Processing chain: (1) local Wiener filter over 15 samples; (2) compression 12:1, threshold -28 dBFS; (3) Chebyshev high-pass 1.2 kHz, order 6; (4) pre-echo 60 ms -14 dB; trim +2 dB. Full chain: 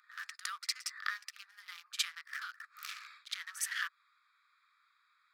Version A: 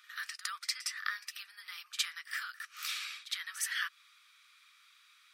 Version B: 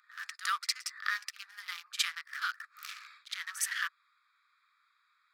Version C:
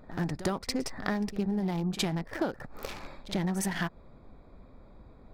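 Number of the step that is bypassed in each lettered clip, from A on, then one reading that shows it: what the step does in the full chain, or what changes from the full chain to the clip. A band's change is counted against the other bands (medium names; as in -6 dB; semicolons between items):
1, 1 kHz band -1.5 dB; 2, mean gain reduction 3.0 dB; 3, 1 kHz band +8.5 dB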